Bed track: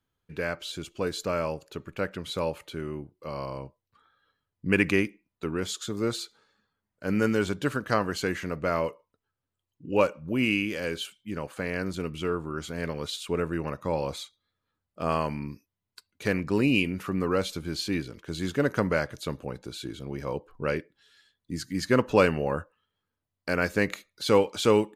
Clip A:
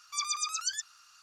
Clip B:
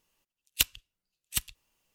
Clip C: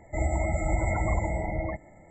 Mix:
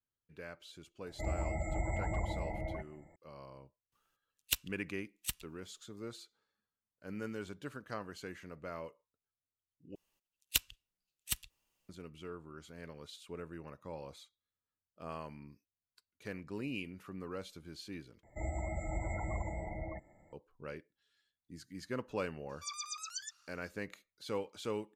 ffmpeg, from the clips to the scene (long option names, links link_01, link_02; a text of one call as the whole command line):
ffmpeg -i bed.wav -i cue0.wav -i cue1.wav -i cue2.wav -filter_complex "[3:a]asplit=2[link_01][link_02];[2:a]asplit=2[link_03][link_04];[0:a]volume=-17dB,asplit=3[link_05][link_06][link_07];[link_05]atrim=end=9.954[link_08];[link_04]atrim=end=1.94,asetpts=PTS-STARTPTS,volume=-6dB[link_09];[link_06]atrim=start=11.886:end=18.234[link_10];[link_02]atrim=end=2.1,asetpts=PTS-STARTPTS,volume=-11.5dB[link_11];[link_07]atrim=start=20.326[link_12];[link_01]atrim=end=2.1,asetpts=PTS-STARTPTS,volume=-9.5dB,afade=type=in:duration=0.004:curve=hsin,afade=type=out:start_time=2.096:duration=0.004:curve=hsin,adelay=1060[link_13];[link_03]atrim=end=1.94,asetpts=PTS-STARTPTS,volume=-8dB,afade=type=in:duration=0.004:curve=hsin,afade=type=out:start_time=1.936:duration=0.004:curve=hsin,adelay=3920[link_14];[1:a]atrim=end=1.22,asetpts=PTS-STARTPTS,volume=-10dB,afade=type=in:duration=0.004:curve=hsin,afade=type=out:start_time=1.216:duration=0.004:curve=hsin,adelay=22490[link_15];[link_08][link_09]acrossfade=duration=0.004:curve1=hsin:curve2=hsin[link_16];[link_16][link_10]acrossfade=duration=0.004:curve1=hsin:curve2=hsin[link_17];[link_17][link_11]acrossfade=duration=0.004:curve1=hsin:curve2=hsin[link_18];[link_18][link_12]acrossfade=duration=0.004:curve1=hsin:curve2=hsin[link_19];[link_19][link_13][link_14][link_15]amix=inputs=4:normalize=0" out.wav